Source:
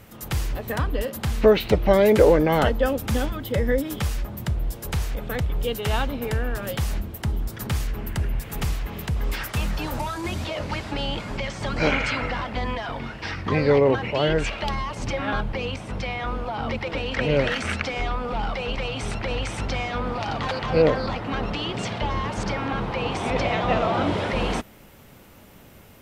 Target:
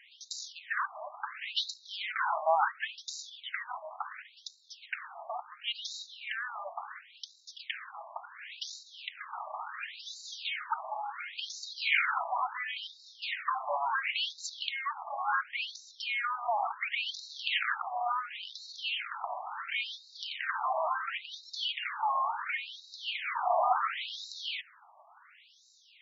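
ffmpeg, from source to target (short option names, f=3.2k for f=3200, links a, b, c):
-af "aeval=exprs='(tanh(6.31*val(0)+0.3)-tanh(0.3))/6.31':c=same,afftfilt=real='re*between(b*sr/1024,840*pow(5300/840,0.5+0.5*sin(2*PI*0.71*pts/sr))/1.41,840*pow(5300/840,0.5+0.5*sin(2*PI*0.71*pts/sr))*1.41)':imag='im*between(b*sr/1024,840*pow(5300/840,0.5+0.5*sin(2*PI*0.71*pts/sr))/1.41,840*pow(5300/840,0.5+0.5*sin(2*PI*0.71*pts/sr))*1.41)':win_size=1024:overlap=0.75,volume=2.5dB"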